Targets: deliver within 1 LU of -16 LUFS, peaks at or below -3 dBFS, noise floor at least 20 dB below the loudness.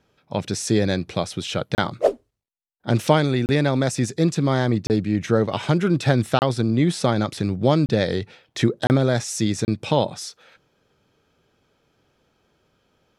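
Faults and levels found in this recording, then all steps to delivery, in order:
dropouts 7; longest dropout 29 ms; loudness -22.0 LUFS; peak -4.0 dBFS; loudness target -16.0 LUFS
-> interpolate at 1.75/3.46/4.87/6.39/7.86/8.87/9.65, 29 ms; gain +6 dB; limiter -3 dBFS

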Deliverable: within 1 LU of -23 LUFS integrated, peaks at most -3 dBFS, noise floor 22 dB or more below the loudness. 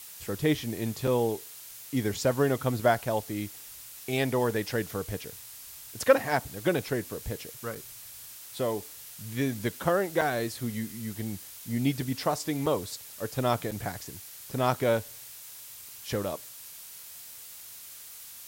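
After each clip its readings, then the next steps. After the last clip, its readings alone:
dropouts 5; longest dropout 5.2 ms; noise floor -46 dBFS; noise floor target -52 dBFS; loudness -30.0 LUFS; peak -9.0 dBFS; loudness target -23.0 LUFS
-> interpolate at 1.07/7.75/10.21/12.66/13.71, 5.2 ms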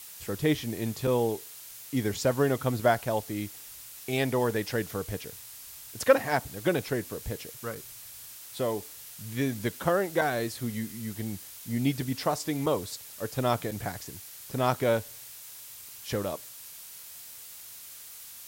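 dropouts 0; noise floor -46 dBFS; noise floor target -52 dBFS
-> noise print and reduce 6 dB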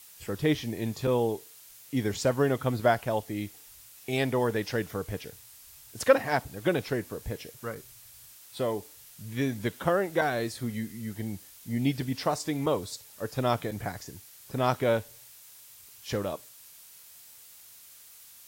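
noise floor -52 dBFS; loudness -30.0 LUFS; peak -9.0 dBFS; loudness target -23.0 LUFS
-> gain +7 dB; limiter -3 dBFS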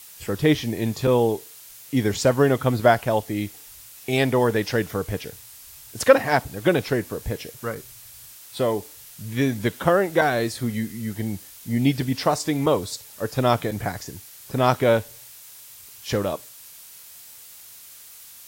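loudness -23.0 LUFS; peak -3.0 dBFS; noise floor -45 dBFS

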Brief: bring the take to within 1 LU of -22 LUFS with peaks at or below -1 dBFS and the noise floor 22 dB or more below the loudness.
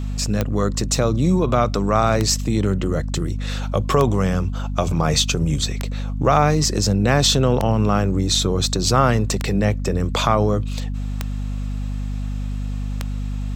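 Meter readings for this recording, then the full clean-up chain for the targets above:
clicks 8; hum 50 Hz; harmonics up to 250 Hz; hum level -22 dBFS; loudness -20.5 LUFS; peak -2.5 dBFS; loudness target -22.0 LUFS
-> de-click; de-hum 50 Hz, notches 5; gain -1.5 dB

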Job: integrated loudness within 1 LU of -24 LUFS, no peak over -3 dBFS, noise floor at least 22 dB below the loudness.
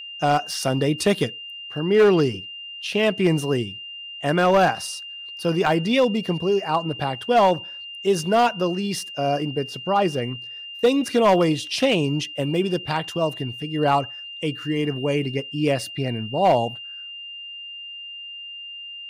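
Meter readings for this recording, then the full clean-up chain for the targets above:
clipped 0.4%; flat tops at -10.5 dBFS; steady tone 2800 Hz; tone level -34 dBFS; loudness -22.0 LUFS; peak -10.5 dBFS; loudness target -24.0 LUFS
-> clip repair -10.5 dBFS; notch 2800 Hz, Q 30; gain -2 dB

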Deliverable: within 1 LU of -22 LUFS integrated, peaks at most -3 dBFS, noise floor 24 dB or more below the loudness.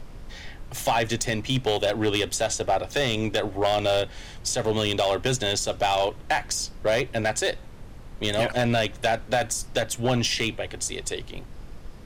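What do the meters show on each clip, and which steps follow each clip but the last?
clipped 1.0%; flat tops at -16.0 dBFS; noise floor -42 dBFS; noise floor target -50 dBFS; loudness -25.5 LUFS; peak -16.0 dBFS; loudness target -22.0 LUFS
-> clip repair -16 dBFS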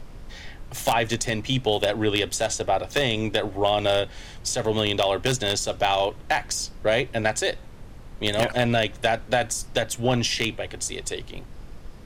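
clipped 0.0%; noise floor -42 dBFS; noise floor target -49 dBFS
-> noise print and reduce 7 dB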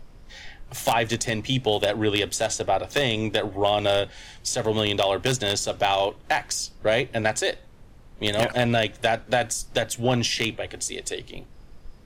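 noise floor -48 dBFS; noise floor target -49 dBFS
-> noise print and reduce 6 dB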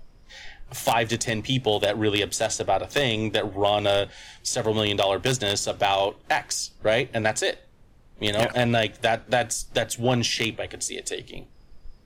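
noise floor -54 dBFS; loudness -24.5 LUFS; peak -7.0 dBFS; loudness target -22.0 LUFS
-> gain +2.5 dB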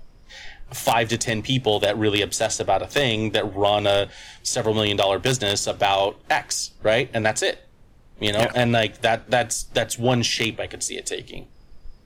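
loudness -22.0 LUFS; peak -4.5 dBFS; noise floor -51 dBFS

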